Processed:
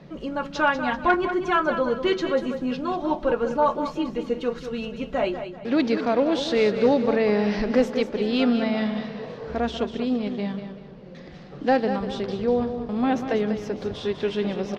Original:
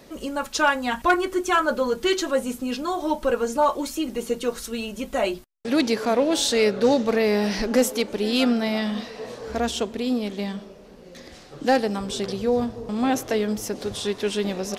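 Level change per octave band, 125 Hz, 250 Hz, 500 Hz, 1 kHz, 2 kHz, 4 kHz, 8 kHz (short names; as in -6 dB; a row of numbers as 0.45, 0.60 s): +1.5 dB, +0.5 dB, 0.0 dB, -0.5 dB, -1.5 dB, -5.5 dB, under -15 dB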